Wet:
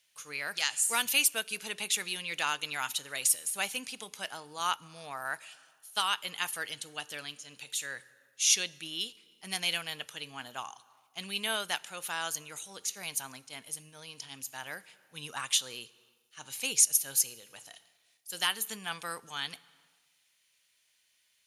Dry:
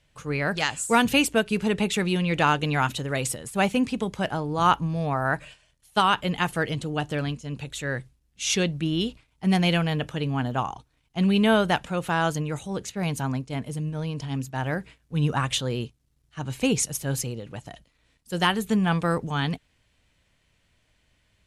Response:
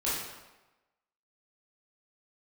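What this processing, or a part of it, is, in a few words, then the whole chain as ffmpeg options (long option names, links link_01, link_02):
compressed reverb return: -filter_complex "[0:a]bandreject=frequency=7800:width=8.1,asplit=2[link_01][link_02];[1:a]atrim=start_sample=2205[link_03];[link_02][link_03]afir=irnorm=-1:irlink=0,acompressor=threshold=-26dB:ratio=6,volume=-16.5dB[link_04];[link_01][link_04]amix=inputs=2:normalize=0,aderivative,volume=4.5dB"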